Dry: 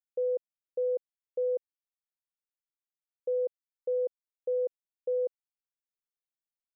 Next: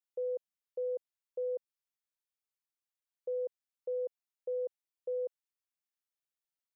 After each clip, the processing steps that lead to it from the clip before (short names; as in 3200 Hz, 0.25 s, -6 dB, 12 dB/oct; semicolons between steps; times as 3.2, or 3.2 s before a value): low shelf 440 Hz -11 dB; gain -1 dB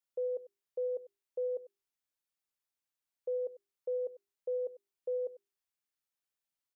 notches 50/100/150/200/250/300/350/400 Hz; echo 97 ms -17.5 dB; gain +1 dB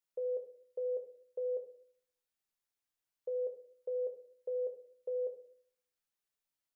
shoebox room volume 63 m³, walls mixed, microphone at 0.42 m; gain -1.5 dB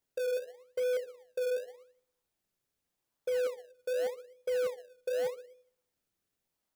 in parallel at -6.5 dB: decimation with a swept rate 30×, swing 100% 0.85 Hz; on the sum: hard clip -31 dBFS, distortion -18 dB; gain +3.5 dB